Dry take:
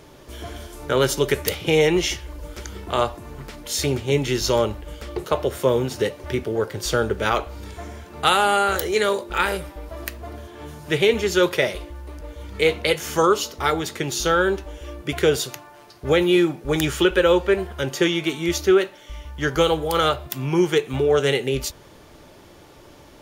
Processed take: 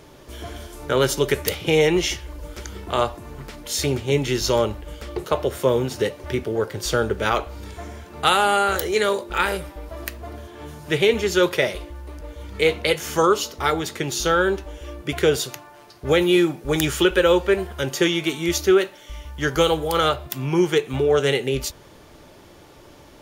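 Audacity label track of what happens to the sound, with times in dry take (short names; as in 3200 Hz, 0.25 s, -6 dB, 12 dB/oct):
16.090000	19.900000	high shelf 5400 Hz +4.5 dB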